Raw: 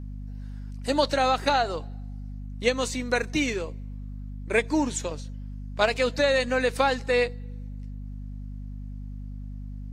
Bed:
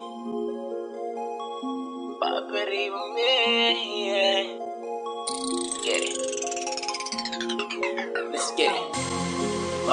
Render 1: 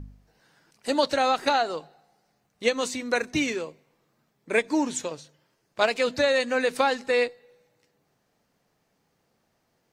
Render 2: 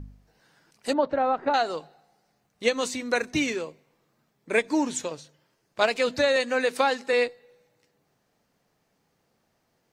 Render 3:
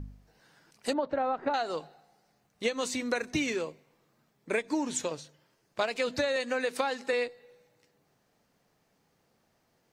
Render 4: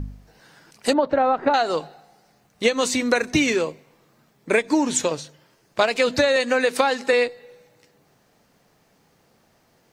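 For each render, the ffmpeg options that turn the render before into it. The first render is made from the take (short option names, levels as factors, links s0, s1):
-af "bandreject=f=50:t=h:w=4,bandreject=f=100:t=h:w=4,bandreject=f=150:t=h:w=4,bandreject=f=200:t=h:w=4,bandreject=f=250:t=h:w=4"
-filter_complex "[0:a]asettb=1/sr,asplit=3[s0][s1][s2];[s0]atrim=end=0.934[s3];[s1]atrim=start=0.93:end=1.54,asetpts=PTS-STARTPTS,afade=t=in:d=0.004:c=qsin,afade=t=out:st=0.606:d=0.004:c=qsin,lowpass=1200[s4];[s2]atrim=start=1.536[s5];[s3][s4]acrossfade=d=0.004:c1=hsin:c2=qsin[s6];[s6][s5]acrossfade=d=0.004:c1=qsin:c2=hsin,asettb=1/sr,asplit=3[s7][s8][s9];[s7]atrim=end=6.364[s10];[s8]atrim=start=6.36:end=7.13,asetpts=PTS-STARTPTS,afade=t=in:d=0.004:c=qsin,afade=t=out:st=0.766:d=0.004:c=qsin,highpass=210[s11];[s9]atrim=start=7.126[s12];[s10][s11]acrossfade=d=0.004:c1=hsin:c2=qsin[s13];[s13][s12]acrossfade=d=0.004:c1=qsin:c2=hsin"
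-af "acompressor=threshold=0.0501:ratio=6"
-af "volume=3.35"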